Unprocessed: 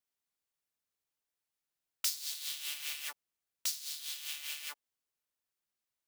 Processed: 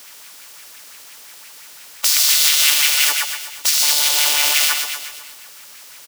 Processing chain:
compressor on every frequency bin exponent 0.6
0:02.07–0:02.71: frequency shifter +17 Hz
0:03.82–0:04.54: flat-topped bell 510 Hz +10.5 dB 2.3 octaves
repeating echo 124 ms, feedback 56%, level −10 dB
boost into a limiter +26.5 dB
auto-filter bell 5.8 Hz 340–2,400 Hz +7 dB
level −2.5 dB

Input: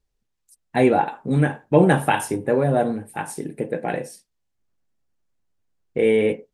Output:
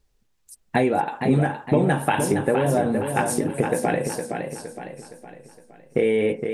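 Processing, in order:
downward compressor 5 to 1, threshold −27 dBFS, peak gain reduction 16 dB
feedback echo with a swinging delay time 464 ms, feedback 45%, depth 72 cents, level −6.5 dB
level +8.5 dB

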